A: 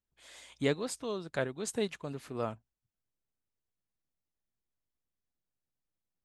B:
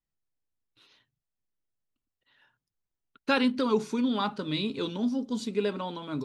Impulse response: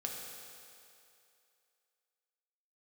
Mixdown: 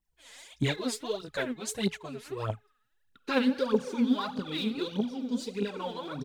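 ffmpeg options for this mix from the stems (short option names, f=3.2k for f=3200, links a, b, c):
-filter_complex "[0:a]bandreject=f=423.7:t=h:w=4,bandreject=f=847.4:t=h:w=4,bandreject=f=1.2711k:t=h:w=4,bandreject=f=1.6948k:t=h:w=4,bandreject=f=2.1185k:t=h:w=4,bandreject=f=2.5422k:t=h:w=4,adynamicequalizer=threshold=0.00316:dfrequency=3400:dqfactor=1.1:tfrequency=3400:tqfactor=1.1:attack=5:release=100:ratio=0.375:range=2:mode=boostabove:tftype=bell,asplit=2[a][b];[b]adelay=9.4,afreqshift=-1.9[c];[a][c]amix=inputs=2:normalize=1,volume=2.5dB[d];[1:a]acompressor=threshold=-38dB:ratio=1.5,volume=-4.5dB,asplit=2[e][f];[f]volume=-5.5dB[g];[2:a]atrim=start_sample=2205[h];[g][h]afir=irnorm=-1:irlink=0[i];[d][e][i]amix=inputs=3:normalize=0,bandreject=f=1.2k:w=23,aphaser=in_gain=1:out_gain=1:delay=4.8:decay=0.75:speed=1.6:type=triangular"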